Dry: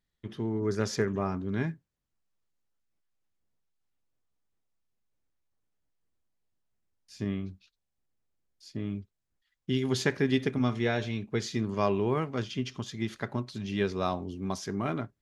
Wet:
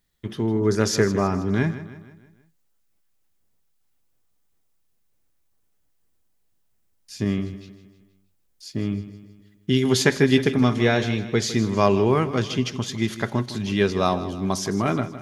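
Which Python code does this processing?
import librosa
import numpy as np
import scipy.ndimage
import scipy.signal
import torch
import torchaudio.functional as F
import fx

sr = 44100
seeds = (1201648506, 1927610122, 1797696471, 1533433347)

y = fx.high_shelf(x, sr, hz=8400.0, db=9.5)
y = fx.echo_feedback(y, sr, ms=158, feedback_pct=49, wet_db=-14.0)
y = F.gain(torch.from_numpy(y), 8.5).numpy()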